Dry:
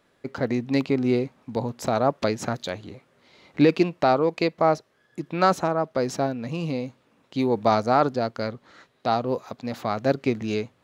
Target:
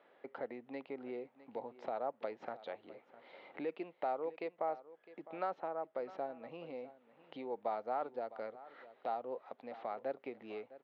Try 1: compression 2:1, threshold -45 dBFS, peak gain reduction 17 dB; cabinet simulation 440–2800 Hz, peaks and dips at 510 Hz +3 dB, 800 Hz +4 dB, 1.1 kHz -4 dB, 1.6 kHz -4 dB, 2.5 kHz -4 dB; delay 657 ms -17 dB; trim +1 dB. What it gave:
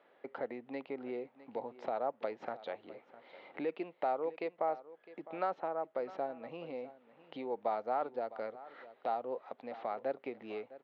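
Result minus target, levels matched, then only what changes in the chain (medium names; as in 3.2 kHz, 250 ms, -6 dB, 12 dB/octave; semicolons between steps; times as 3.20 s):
compression: peak gain reduction -3 dB
change: compression 2:1, threshold -51.5 dBFS, peak gain reduction 20.5 dB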